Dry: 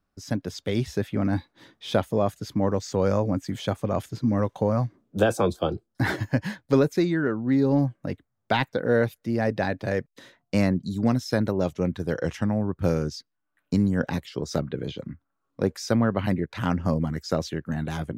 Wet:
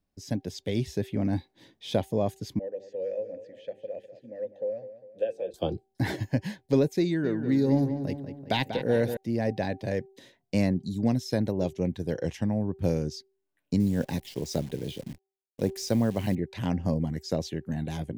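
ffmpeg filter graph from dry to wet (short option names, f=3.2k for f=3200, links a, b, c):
-filter_complex "[0:a]asettb=1/sr,asplit=3[a][b][c];[a]atrim=end=2.594[d];[b]atrim=start=2.59:end=5.54,asetpts=PTS-STARTPTS,afade=t=in:d=0.004:c=qsin,afade=t=out:st=2.946:d=0.004:c=qsin,asplit=3[e][f][g];[e]bandpass=f=530:t=q:w=8,volume=0dB[h];[f]bandpass=f=1.84k:t=q:w=8,volume=-6dB[i];[g]bandpass=f=2.48k:t=q:w=8,volume=-9dB[j];[h][i][j]amix=inputs=3:normalize=0,bandreject=f=50:t=h:w=6,bandreject=f=100:t=h:w=6,bandreject=f=150:t=h:w=6,bandreject=f=200:t=h:w=6,bandreject=f=250:t=h:w=6,bandreject=f=300:t=h:w=6,bandreject=f=350:t=h:w=6,bandreject=f=400:t=h:w=6,bandreject=f=450:t=h:w=6,aecho=1:1:201|402|603|804:0.224|0.101|0.0453|0.0204,atrim=end_sample=130095[k];[c]atrim=start=5.536[l];[d][k]acrossfade=d=0.004:c1=hsin:c2=qsin[m];[m][l]acrossfade=d=0.004:c1=qsin:c2=hsin,asettb=1/sr,asplit=3[n][o][p];[n]atrim=end=7.054[q];[o]atrim=start=7.05:end=9.17,asetpts=PTS-STARTPTS,afade=t=in:d=0.004:c=qsin,afade=t=out:st=2.116:d=0.004:c=qsin,highshelf=f=3.6k:g=7.5,asplit=2[r][s];[s]adelay=191,lowpass=f=2.9k:p=1,volume=-8.5dB,asplit=2[t][u];[u]adelay=191,lowpass=f=2.9k:p=1,volume=0.52,asplit=2[v][w];[w]adelay=191,lowpass=f=2.9k:p=1,volume=0.52,asplit=2[x][y];[y]adelay=191,lowpass=f=2.9k:p=1,volume=0.52,asplit=2[z][aa];[aa]adelay=191,lowpass=f=2.9k:p=1,volume=0.52,asplit=2[ab][ac];[ac]adelay=191,lowpass=f=2.9k:p=1,volume=0.52[ad];[r][t][v][x][z][ab][ad]amix=inputs=7:normalize=0,atrim=end_sample=93492[ae];[p]atrim=start=9.166[af];[q][ae]acrossfade=d=0.004:c1=hsin:c2=qsin[ag];[ag][af]acrossfade=d=0.004:c1=qsin:c2=hsin,asettb=1/sr,asplit=3[ah][ai][aj];[ah]atrim=end=13.804[ak];[ai]atrim=start=13.8:end=16.35,asetpts=PTS-STARTPTS,afade=t=in:d=0.004:c=qsin,afade=t=out:st=2.546:d=0.004:c=qsin,highshelf=f=7.4k:g=6.5,acrusher=bits=8:dc=4:mix=0:aa=0.000001[al];[aj]atrim=start=16.346[am];[ak][al]acrossfade=d=0.004:c1=hsin:c2=qsin[an];[an][am]acrossfade=d=0.004:c1=qsin:c2=hsin,equalizer=f=1.3k:w=2.5:g=-15,bandreject=f=387.2:t=h:w=4,bandreject=f=774.4:t=h:w=4,volume=-2.5dB"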